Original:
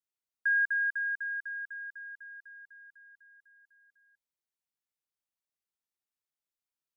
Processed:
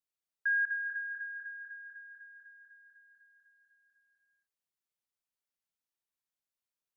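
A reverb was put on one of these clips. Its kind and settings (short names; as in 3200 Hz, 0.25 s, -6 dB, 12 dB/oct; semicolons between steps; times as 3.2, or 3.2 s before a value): non-linear reverb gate 0.33 s rising, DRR 7.5 dB; gain -2.5 dB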